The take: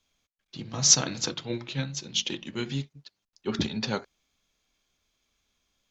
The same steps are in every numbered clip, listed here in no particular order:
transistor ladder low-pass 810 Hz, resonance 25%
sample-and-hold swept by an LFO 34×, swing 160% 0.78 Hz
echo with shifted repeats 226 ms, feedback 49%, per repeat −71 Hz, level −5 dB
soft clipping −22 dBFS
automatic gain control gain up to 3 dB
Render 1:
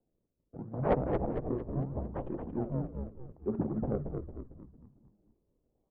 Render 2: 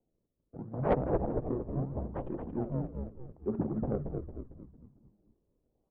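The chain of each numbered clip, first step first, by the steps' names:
sample-and-hold swept by an LFO, then transistor ladder low-pass, then soft clipping, then echo with shifted repeats, then automatic gain control
sample-and-hold swept by an LFO, then transistor ladder low-pass, then echo with shifted repeats, then soft clipping, then automatic gain control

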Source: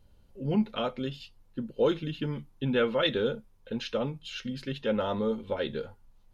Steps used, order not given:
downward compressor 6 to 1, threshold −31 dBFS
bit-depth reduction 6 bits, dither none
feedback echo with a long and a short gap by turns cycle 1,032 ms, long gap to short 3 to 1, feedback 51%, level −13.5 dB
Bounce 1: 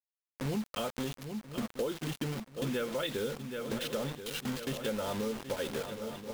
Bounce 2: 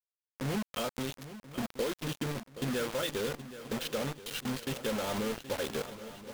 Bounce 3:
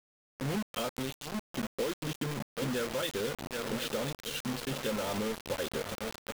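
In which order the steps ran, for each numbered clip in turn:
bit-depth reduction, then feedback echo with a long and a short gap by turns, then downward compressor
downward compressor, then bit-depth reduction, then feedback echo with a long and a short gap by turns
feedback echo with a long and a short gap by turns, then downward compressor, then bit-depth reduction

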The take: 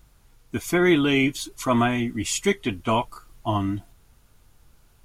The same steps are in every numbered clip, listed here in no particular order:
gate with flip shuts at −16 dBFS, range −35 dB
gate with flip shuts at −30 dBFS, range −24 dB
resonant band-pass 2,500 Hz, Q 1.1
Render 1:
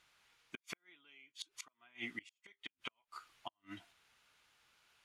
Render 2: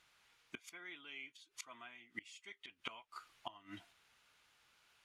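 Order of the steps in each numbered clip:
first gate with flip, then resonant band-pass, then second gate with flip
resonant band-pass, then second gate with flip, then first gate with flip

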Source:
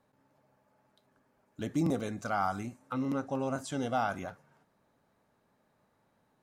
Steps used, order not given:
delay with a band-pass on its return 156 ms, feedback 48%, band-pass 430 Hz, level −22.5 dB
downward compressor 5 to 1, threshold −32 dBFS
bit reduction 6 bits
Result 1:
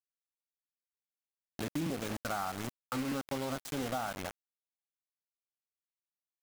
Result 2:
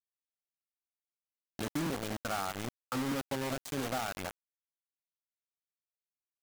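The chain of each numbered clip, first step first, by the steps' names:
delay with a band-pass on its return, then bit reduction, then downward compressor
delay with a band-pass on its return, then downward compressor, then bit reduction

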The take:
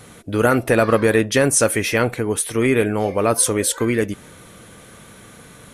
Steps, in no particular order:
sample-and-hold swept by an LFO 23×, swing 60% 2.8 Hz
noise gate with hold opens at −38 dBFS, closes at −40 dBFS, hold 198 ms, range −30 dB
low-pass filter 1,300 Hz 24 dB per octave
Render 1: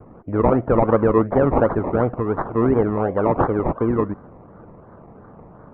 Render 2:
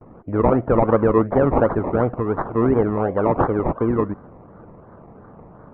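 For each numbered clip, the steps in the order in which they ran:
noise gate with hold, then sample-and-hold swept by an LFO, then low-pass filter
sample-and-hold swept by an LFO, then noise gate with hold, then low-pass filter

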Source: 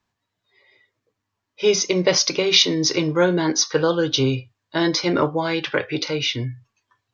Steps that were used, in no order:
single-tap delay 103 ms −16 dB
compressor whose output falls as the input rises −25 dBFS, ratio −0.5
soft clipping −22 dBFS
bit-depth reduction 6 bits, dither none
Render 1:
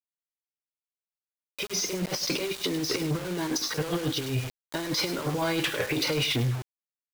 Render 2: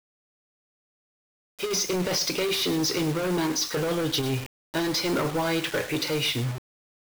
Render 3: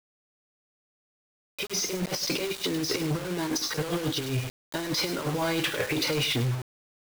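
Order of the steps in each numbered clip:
compressor whose output falls as the input rises, then single-tap delay, then bit-depth reduction, then soft clipping
soft clipping, then compressor whose output falls as the input rises, then single-tap delay, then bit-depth reduction
compressor whose output falls as the input rises, then single-tap delay, then soft clipping, then bit-depth reduction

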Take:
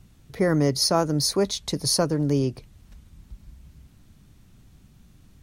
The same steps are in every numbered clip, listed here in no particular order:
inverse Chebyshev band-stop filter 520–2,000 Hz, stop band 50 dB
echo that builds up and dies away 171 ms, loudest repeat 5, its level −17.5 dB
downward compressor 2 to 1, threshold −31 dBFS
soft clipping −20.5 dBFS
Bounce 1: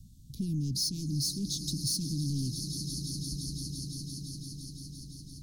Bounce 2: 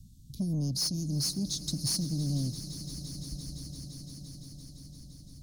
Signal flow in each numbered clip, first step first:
echo that builds up and dies away, then soft clipping, then inverse Chebyshev band-stop filter, then downward compressor
inverse Chebyshev band-stop filter, then soft clipping, then downward compressor, then echo that builds up and dies away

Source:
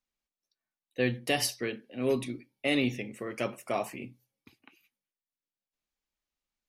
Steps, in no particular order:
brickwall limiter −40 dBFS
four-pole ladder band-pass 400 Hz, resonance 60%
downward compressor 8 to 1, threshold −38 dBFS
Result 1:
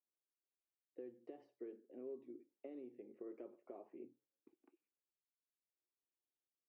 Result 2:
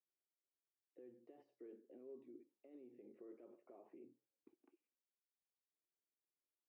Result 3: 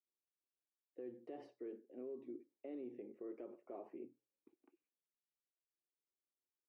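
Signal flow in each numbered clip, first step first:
downward compressor, then four-pole ladder band-pass, then brickwall limiter
downward compressor, then brickwall limiter, then four-pole ladder band-pass
four-pole ladder band-pass, then downward compressor, then brickwall limiter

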